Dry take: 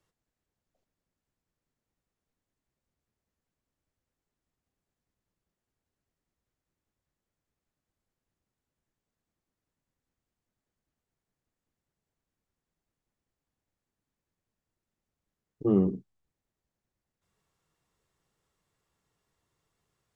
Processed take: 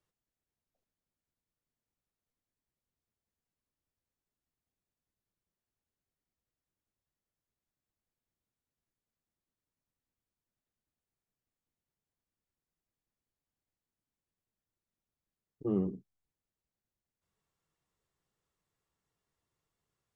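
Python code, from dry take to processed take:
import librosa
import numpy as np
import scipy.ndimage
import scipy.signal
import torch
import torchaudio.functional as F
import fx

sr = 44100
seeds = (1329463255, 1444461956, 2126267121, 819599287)

y = fx.vibrato(x, sr, rate_hz=11.0, depth_cents=34.0)
y = y * librosa.db_to_amplitude(-7.5)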